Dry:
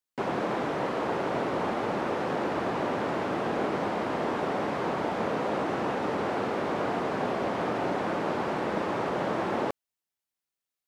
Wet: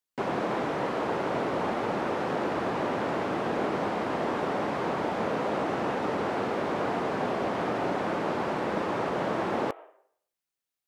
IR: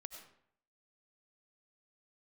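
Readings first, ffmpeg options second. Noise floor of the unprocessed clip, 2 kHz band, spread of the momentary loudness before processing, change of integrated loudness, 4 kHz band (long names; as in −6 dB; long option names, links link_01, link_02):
below −85 dBFS, 0.0 dB, 1 LU, 0.0 dB, 0.0 dB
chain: -filter_complex "[0:a]asplit=2[link_01][link_02];[link_02]highpass=frequency=310:width_type=q:width=0.5412,highpass=frequency=310:width_type=q:width=1.307,lowpass=frequency=3100:width_type=q:width=0.5176,lowpass=frequency=3100:width_type=q:width=0.7071,lowpass=frequency=3100:width_type=q:width=1.932,afreqshift=72[link_03];[1:a]atrim=start_sample=2205,adelay=17[link_04];[link_03][link_04]afir=irnorm=-1:irlink=0,volume=-9dB[link_05];[link_01][link_05]amix=inputs=2:normalize=0"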